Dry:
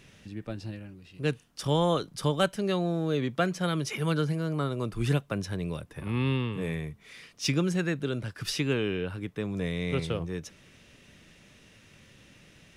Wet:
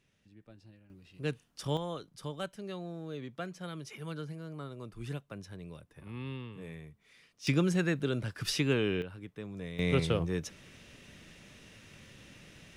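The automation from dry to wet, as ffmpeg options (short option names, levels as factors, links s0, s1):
-af "asetnsamples=n=441:p=0,asendcmd='0.9 volume volume -6dB;1.77 volume volume -13dB;7.47 volume volume -1dB;9.02 volume volume -10dB;9.79 volume volume 1.5dB',volume=0.119"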